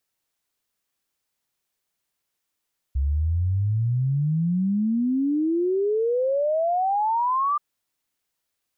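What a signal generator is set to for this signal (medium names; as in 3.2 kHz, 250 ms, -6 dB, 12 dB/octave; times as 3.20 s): log sweep 66 Hz -> 1.2 kHz 4.63 s -19.5 dBFS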